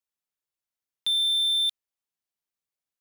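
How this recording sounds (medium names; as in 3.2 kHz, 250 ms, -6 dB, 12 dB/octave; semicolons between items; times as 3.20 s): noise floor -92 dBFS; spectral tilt +4.0 dB/octave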